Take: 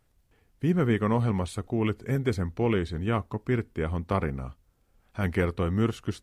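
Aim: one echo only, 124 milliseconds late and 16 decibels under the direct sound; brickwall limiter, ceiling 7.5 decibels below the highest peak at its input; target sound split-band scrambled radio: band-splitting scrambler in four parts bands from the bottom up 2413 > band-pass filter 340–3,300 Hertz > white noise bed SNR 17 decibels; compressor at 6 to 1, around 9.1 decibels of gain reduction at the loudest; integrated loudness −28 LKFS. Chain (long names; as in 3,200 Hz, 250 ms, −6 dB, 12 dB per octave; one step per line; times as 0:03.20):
downward compressor 6 to 1, threshold −30 dBFS
brickwall limiter −26.5 dBFS
single-tap delay 124 ms −16 dB
band-splitting scrambler in four parts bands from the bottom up 2413
band-pass filter 340–3,300 Hz
white noise bed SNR 17 dB
level +7.5 dB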